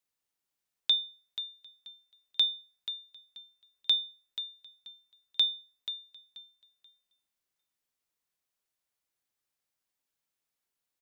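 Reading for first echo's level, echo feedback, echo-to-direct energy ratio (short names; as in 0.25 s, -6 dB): -11.5 dB, 25%, -11.0 dB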